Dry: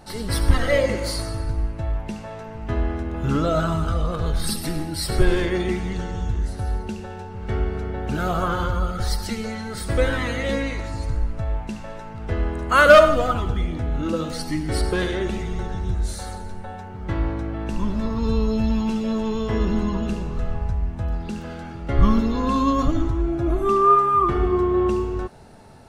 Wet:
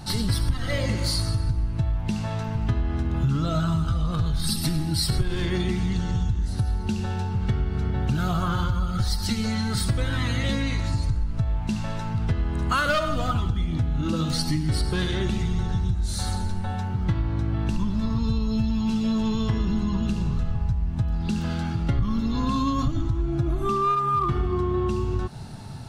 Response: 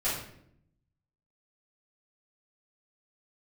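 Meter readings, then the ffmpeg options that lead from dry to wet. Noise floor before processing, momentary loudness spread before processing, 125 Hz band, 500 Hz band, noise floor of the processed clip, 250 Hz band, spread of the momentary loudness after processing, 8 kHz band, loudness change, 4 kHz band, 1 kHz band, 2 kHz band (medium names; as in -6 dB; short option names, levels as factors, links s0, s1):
-35 dBFS, 11 LU, +2.5 dB, -10.5 dB, -29 dBFS, -1.5 dB, 4 LU, 0.0 dB, -3.0 dB, +1.5 dB, -6.0 dB, -7.5 dB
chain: -filter_complex "[0:a]asplit=2[s0][s1];[s1]aeval=exprs='clip(val(0),-1,0.2)':c=same,volume=0.631[s2];[s0][s2]amix=inputs=2:normalize=0,equalizer=f=125:t=o:w=1:g=10,equalizer=f=500:t=o:w=1:g=-10,equalizer=f=2000:t=o:w=1:g=-4,equalizer=f=4000:t=o:w=1:g=5,acompressor=threshold=0.0708:ratio=6,volume=1.26"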